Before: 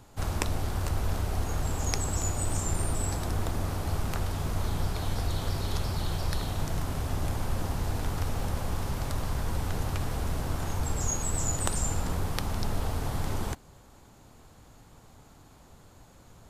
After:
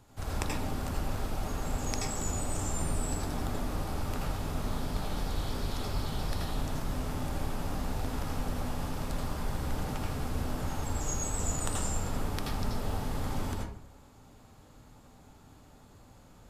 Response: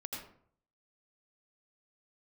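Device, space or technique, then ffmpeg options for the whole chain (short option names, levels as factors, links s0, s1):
bathroom: -filter_complex "[1:a]atrim=start_sample=2205[s0];[0:a][s0]afir=irnorm=-1:irlink=0,volume=0.841"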